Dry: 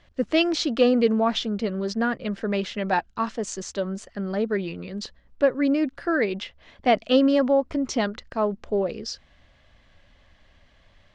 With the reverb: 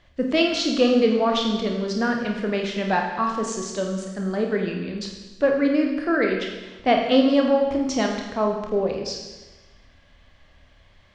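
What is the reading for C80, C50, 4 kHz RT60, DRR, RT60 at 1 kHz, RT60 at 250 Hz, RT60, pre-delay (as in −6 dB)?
6.0 dB, 3.5 dB, 1.2 s, 1.0 dB, 1.2 s, 1.2 s, 1.2 s, 27 ms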